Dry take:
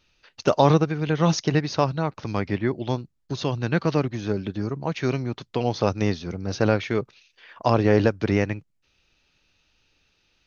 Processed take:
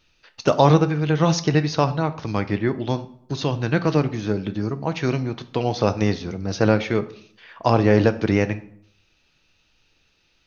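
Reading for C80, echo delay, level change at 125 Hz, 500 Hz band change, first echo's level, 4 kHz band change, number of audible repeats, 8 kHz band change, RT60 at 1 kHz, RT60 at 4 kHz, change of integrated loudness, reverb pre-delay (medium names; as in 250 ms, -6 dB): 19.0 dB, no echo, +3.0 dB, +2.0 dB, no echo, +2.5 dB, no echo, no reading, 0.60 s, 0.45 s, +2.5 dB, 6 ms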